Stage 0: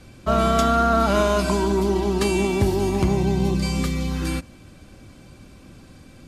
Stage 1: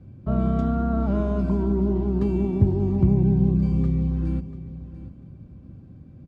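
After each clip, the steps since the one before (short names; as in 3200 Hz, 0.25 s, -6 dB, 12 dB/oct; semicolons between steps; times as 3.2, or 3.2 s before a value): band-pass 120 Hz, Q 1.2; feedback echo 0.69 s, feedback 24%, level -15 dB; gain +5.5 dB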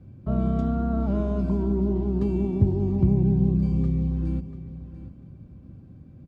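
dynamic EQ 1500 Hz, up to -4 dB, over -45 dBFS, Q 0.94; gain -1.5 dB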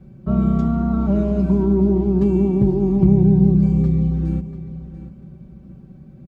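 comb 5.3 ms, depth 99%; gain +3 dB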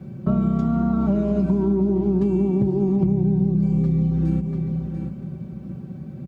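HPF 77 Hz 24 dB/oct; compressor 6:1, threshold -25 dBFS, peak gain reduction 15 dB; gain +7.5 dB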